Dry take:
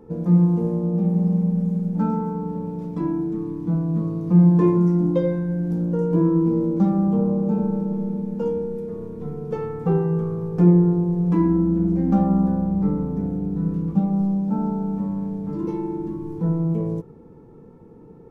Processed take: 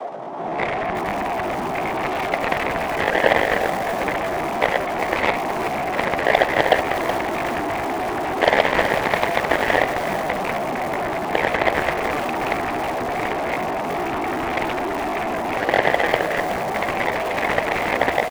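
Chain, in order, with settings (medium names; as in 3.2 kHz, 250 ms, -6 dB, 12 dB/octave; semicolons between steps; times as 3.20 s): one-bit comparator; level rider gain up to 14.5 dB; noise-vocoded speech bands 8; in parallel at -11 dB: hard clipper -3 dBFS, distortion -16 dB; on the sum: band-pass filter 560 Hz, Q 3.7; pitch shift +4.5 st; Chebyshev shaper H 3 -22 dB, 7 -12 dB, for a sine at 1 dBFS; delay 78 ms -20 dB; bit-crushed delay 373 ms, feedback 55%, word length 4-bit, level -9 dB; trim -2 dB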